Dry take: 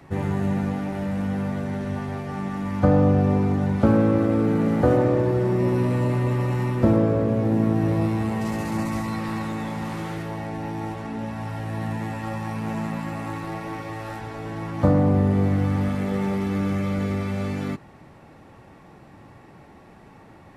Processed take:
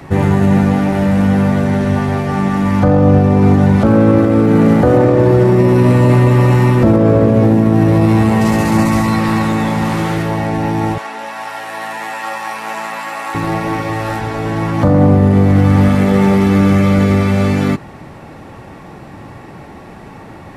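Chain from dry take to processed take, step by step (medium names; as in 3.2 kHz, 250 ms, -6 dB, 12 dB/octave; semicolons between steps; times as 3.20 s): 10.98–13.35 s: high-pass 790 Hz 12 dB/octave; loudness maximiser +15 dB; trim -1 dB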